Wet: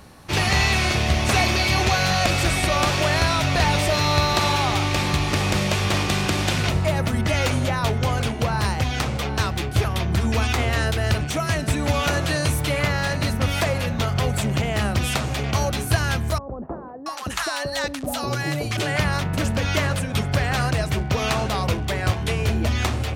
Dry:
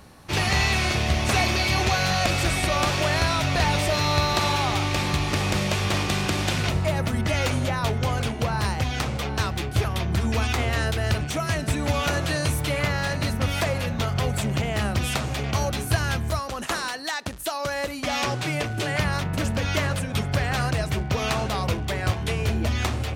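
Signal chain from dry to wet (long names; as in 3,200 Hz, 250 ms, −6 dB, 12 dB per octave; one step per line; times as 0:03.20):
0:16.38–0:18.77: multiband delay without the direct sound lows, highs 680 ms, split 790 Hz
level +2.5 dB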